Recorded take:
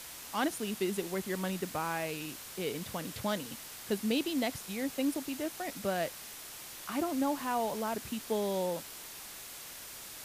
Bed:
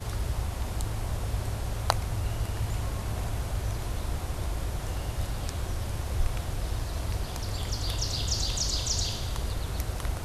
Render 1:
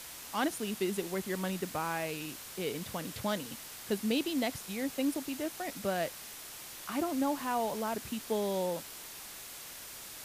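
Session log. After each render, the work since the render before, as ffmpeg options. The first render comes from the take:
ffmpeg -i in.wav -af anull out.wav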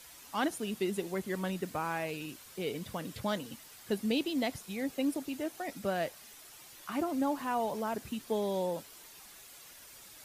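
ffmpeg -i in.wav -af "afftdn=noise_reduction=9:noise_floor=-47" out.wav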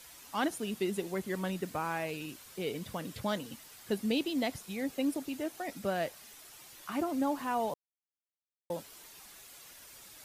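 ffmpeg -i in.wav -filter_complex "[0:a]asplit=3[link_01][link_02][link_03];[link_01]atrim=end=7.74,asetpts=PTS-STARTPTS,afade=type=out:start_time=7.736:duration=0.004:curve=hsin[link_04];[link_02]atrim=start=7.74:end=8.7,asetpts=PTS-STARTPTS,volume=0[link_05];[link_03]atrim=start=8.7,asetpts=PTS-STARTPTS,afade=type=in:duration=0.004:curve=hsin[link_06];[link_04][link_05][link_06]concat=n=3:v=0:a=1" out.wav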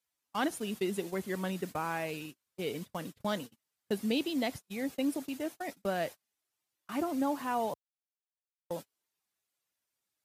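ffmpeg -i in.wav -af "highpass=63,agate=range=-34dB:threshold=-40dB:ratio=16:detection=peak" out.wav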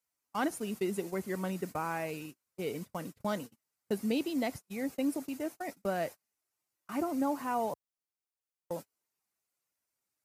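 ffmpeg -i in.wav -af "equalizer=frequency=3400:width_type=o:width=0.61:gain=-8,bandreject=frequency=1700:width=19" out.wav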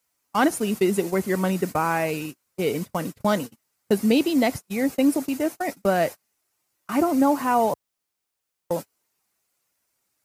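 ffmpeg -i in.wav -af "volume=12dB" out.wav

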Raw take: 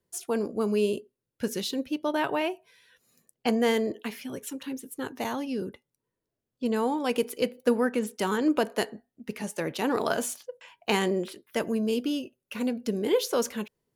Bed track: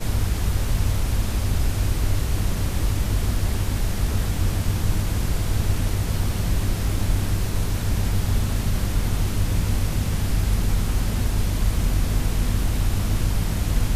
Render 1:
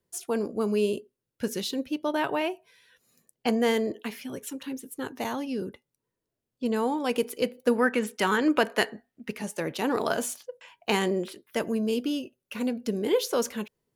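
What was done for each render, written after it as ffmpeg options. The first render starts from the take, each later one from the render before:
ffmpeg -i in.wav -filter_complex "[0:a]asettb=1/sr,asplit=3[link_01][link_02][link_03];[link_01]atrim=end=7.784[link_04];[link_02]atrim=start=7.78:end=9.32,asetpts=PTS-STARTPTS,afade=type=in:duration=0.004:curve=qsin,afade=type=out:start_time=1.536:duration=0.004:curve=qsin,equalizer=frequency=1900:width=0.69:gain=8[link_05];[link_03]atrim=start=9.316[link_06];[link_04][link_05]acrossfade=duration=0.004:curve1=hsin:curve2=qsin[link_07];[link_07][link_06]acrossfade=duration=0.004:curve1=qsin:curve2=hsin" out.wav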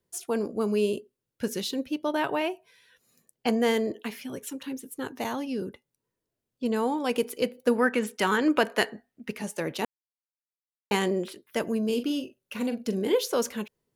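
ffmpeg -i in.wav -filter_complex "[0:a]asettb=1/sr,asplit=3[link_01][link_02][link_03];[link_01]atrim=end=11.854[link_04];[link_02]atrim=start=11.85:end=13.15,asetpts=PTS-STARTPTS,afade=type=in:duration=0.004:curve=qsin,afade=type=out:start_time=1.296:duration=0.004:curve=qsin,asplit=2[link_05][link_06];[link_06]adelay=42,volume=-10dB[link_07];[link_05][link_07]amix=inputs=2:normalize=0,atrim=end_sample=57330[link_08];[link_03]atrim=start=13.146[link_09];[link_04][link_08]acrossfade=duration=0.004:curve1=hsin:curve2=qsin[link_10];[link_10][link_09]acrossfade=duration=0.004:curve1=qsin:curve2=hsin,asplit=3[link_11][link_12][link_13];[link_11]atrim=end=9.85,asetpts=PTS-STARTPTS,afade=type=out:start_time=9.846:duration=0.004:curve=hsin[link_14];[link_12]atrim=start=9.85:end=10.91,asetpts=PTS-STARTPTS,volume=0[link_15];[link_13]atrim=start=10.91,asetpts=PTS-STARTPTS,afade=type=in:duration=0.004:curve=hsin[link_16];[link_14][link_15][link_16]concat=n=3:v=0:a=1" out.wav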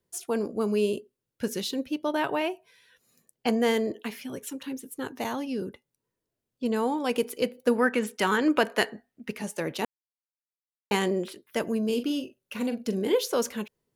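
ffmpeg -i in.wav -af anull out.wav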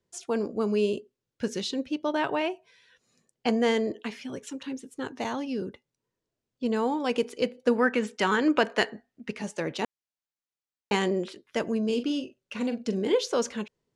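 ffmpeg -i in.wav -af "lowpass=frequency=7700:width=0.5412,lowpass=frequency=7700:width=1.3066" out.wav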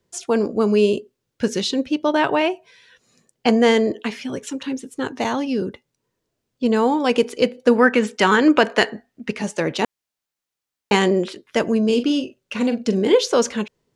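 ffmpeg -i in.wav -af "volume=9dB,alimiter=limit=-3dB:level=0:latency=1" out.wav

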